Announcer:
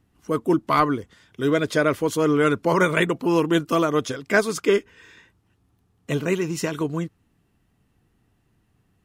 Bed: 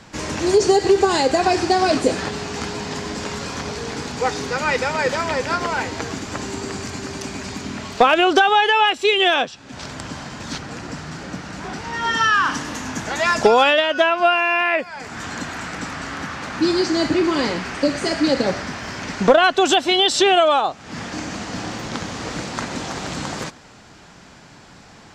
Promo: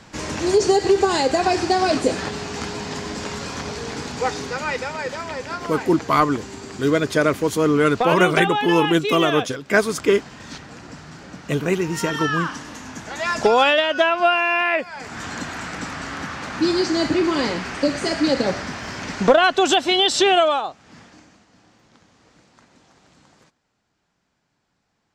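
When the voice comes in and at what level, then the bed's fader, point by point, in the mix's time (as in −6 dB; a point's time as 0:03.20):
5.40 s, +2.0 dB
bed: 0:04.25 −1.5 dB
0:05.06 −7.5 dB
0:13.06 −7.5 dB
0:13.62 −1 dB
0:20.42 −1 dB
0:21.47 −27 dB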